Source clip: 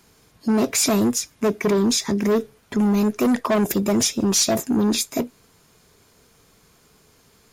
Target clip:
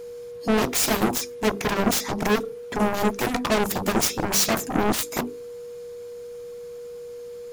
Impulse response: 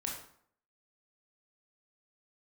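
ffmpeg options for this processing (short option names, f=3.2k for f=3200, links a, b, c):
-af "bandreject=f=50:t=h:w=6,bandreject=f=100:t=h:w=6,bandreject=f=150:t=h:w=6,bandreject=f=200:t=h:w=6,bandreject=f=250:t=h:w=6,bandreject=f=300:t=h:w=6,bandreject=f=350:t=h:w=6,bandreject=f=400:t=h:w=6,bandreject=f=450:t=h:w=6,aeval=exprs='val(0)+0.0141*sin(2*PI*480*n/s)':c=same,aeval=exprs='0.355*(cos(1*acos(clip(val(0)/0.355,-1,1)))-cos(1*PI/2))+0.158*(cos(7*acos(clip(val(0)/0.355,-1,1)))-cos(7*PI/2))':c=same,volume=-4dB"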